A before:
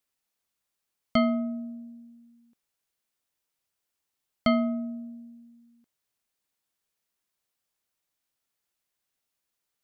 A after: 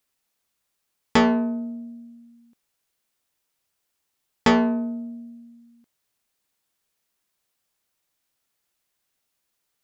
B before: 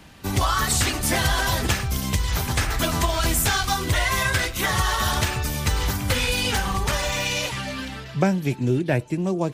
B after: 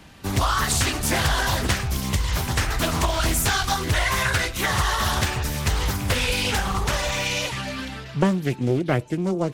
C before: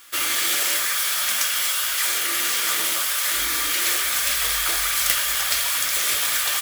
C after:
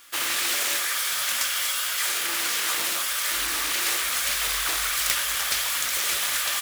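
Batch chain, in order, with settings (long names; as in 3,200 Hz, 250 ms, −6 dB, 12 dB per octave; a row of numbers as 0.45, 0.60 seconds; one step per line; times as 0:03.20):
highs frequency-modulated by the lows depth 0.52 ms
loudness normalisation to −23 LKFS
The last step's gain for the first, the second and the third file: +6.0, 0.0, −2.5 decibels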